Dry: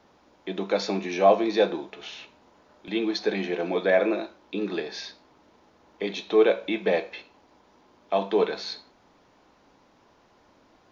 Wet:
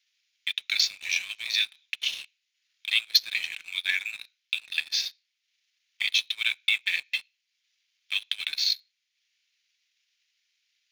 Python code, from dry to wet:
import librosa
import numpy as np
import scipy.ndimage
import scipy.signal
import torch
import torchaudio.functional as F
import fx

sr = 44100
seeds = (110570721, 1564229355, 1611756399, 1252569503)

y = scipy.signal.sosfilt(scipy.signal.butter(6, 2200.0, 'highpass', fs=sr, output='sos'), x)
y = fx.transient(y, sr, attack_db=9, sustain_db=-5)
y = fx.leveller(y, sr, passes=2)